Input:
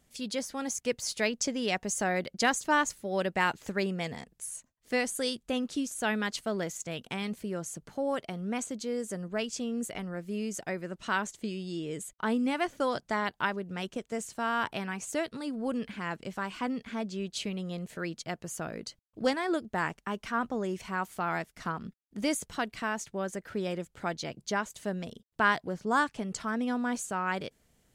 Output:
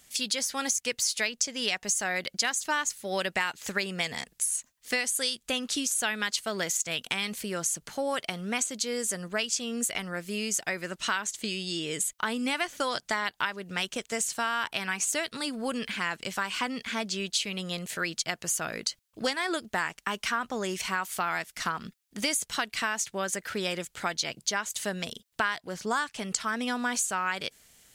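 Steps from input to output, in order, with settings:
tilt shelving filter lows −8.5 dB, about 1,100 Hz
downward compressor 6 to 1, threshold −33 dBFS, peak gain reduction 14.5 dB
level +7.5 dB

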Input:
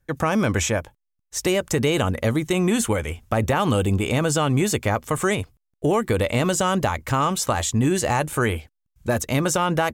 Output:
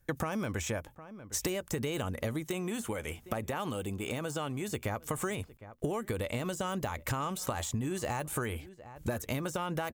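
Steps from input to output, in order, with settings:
de-essing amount 50%
high-shelf EQ 11,000 Hz +9.5 dB
slap from a distant wall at 130 metres, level −27 dB
downward compressor 16 to 1, threshold −30 dBFS, peak gain reduction 15 dB
0:02.42–0:04.68: low-shelf EQ 95 Hz −11 dB

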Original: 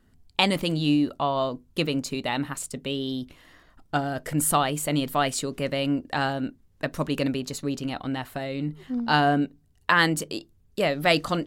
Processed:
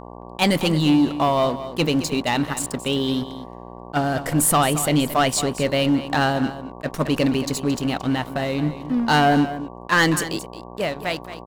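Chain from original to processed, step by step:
fade-out on the ending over 1.45 s
leveller curve on the samples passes 3
hum with harmonics 60 Hz, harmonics 19, −34 dBFS −1 dB per octave
single-tap delay 222 ms −13 dB
level that may rise only so fast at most 450 dB per second
level −4.5 dB

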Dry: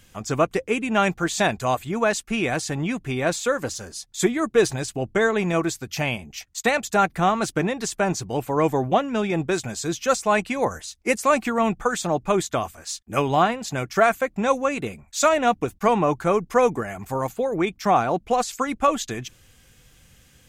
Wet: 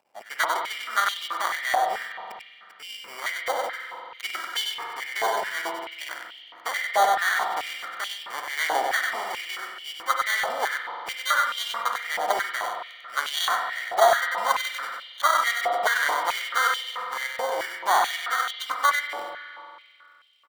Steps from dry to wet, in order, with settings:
adaptive Wiener filter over 41 samples
0:01.99–0:02.80: gate with flip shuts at −20 dBFS, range −38 dB
in parallel at −4.5 dB: gain into a clipping stage and back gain 23.5 dB
on the sum: decimation without filtering 17×
half-wave rectification
on a send: single-tap delay 96 ms −4.5 dB
on the sum: spring reverb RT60 2.6 s, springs 45 ms, chirp 25 ms, DRR 2.5 dB
high-pass on a step sequencer 4.6 Hz 750–3,000 Hz
level −4 dB

